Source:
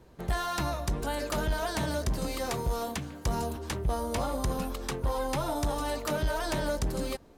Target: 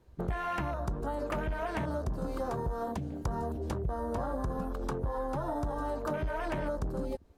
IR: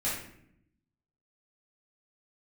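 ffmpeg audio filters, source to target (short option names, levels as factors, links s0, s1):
-af "afwtdn=0.0141,acompressor=threshold=0.0126:ratio=6,volume=2.24"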